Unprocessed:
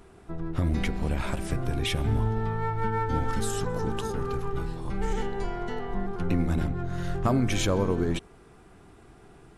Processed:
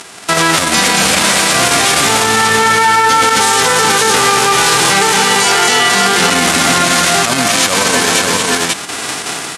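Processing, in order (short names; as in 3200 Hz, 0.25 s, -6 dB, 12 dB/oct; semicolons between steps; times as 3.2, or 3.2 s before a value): spectral whitening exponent 0.3; chopper 2.7 Hz, depth 60%, duty 90%; in parallel at -6 dB: companded quantiser 2-bit; on the sum: LPF 10000 Hz 24 dB/oct; bell 370 Hz -9 dB 0.3 oct; AGC gain up to 13.5 dB; HPF 180 Hz 12 dB/oct; bell 750 Hz -2 dB 0.29 oct; on a send: tapped delay 0.227/0.458/0.544 s -7/-14/-8.5 dB; on the sum: maximiser +20.5 dB; gain -1 dB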